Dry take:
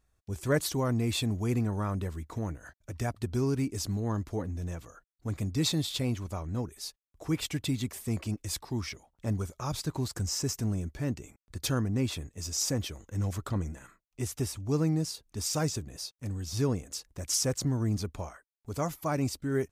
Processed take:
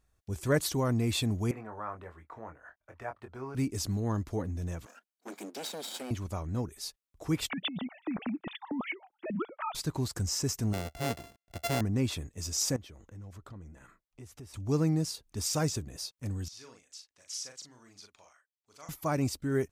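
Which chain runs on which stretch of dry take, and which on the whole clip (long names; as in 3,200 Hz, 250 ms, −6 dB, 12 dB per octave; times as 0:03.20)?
0:01.51–0:03.55: three-way crossover with the lows and the highs turned down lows −19 dB, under 530 Hz, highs −24 dB, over 2,100 Hz + double-tracking delay 23 ms −7 dB
0:04.86–0:06.11: lower of the sound and its delayed copy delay 1.3 ms + Butterworth high-pass 220 Hz 48 dB per octave + downward compressor 4 to 1, threshold −36 dBFS
0:07.50–0:09.75: three sine waves on the formant tracks + compressor whose output falls as the input rises −33 dBFS
0:10.73–0:11.81: samples sorted by size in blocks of 64 samples + Butterworth band-reject 1,300 Hz, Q 7.7 + low-shelf EQ 120 Hz −6.5 dB
0:12.76–0:14.54: high-shelf EQ 3,600 Hz −8 dB + downward compressor 2.5 to 1, threshold −51 dBFS
0:16.48–0:18.89: low-pass filter 3,900 Hz + first difference + double-tracking delay 40 ms −5 dB
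whole clip: no processing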